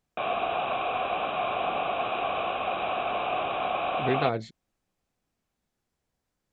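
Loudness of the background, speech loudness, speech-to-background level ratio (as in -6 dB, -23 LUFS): -29.0 LUFS, -30.5 LUFS, -1.5 dB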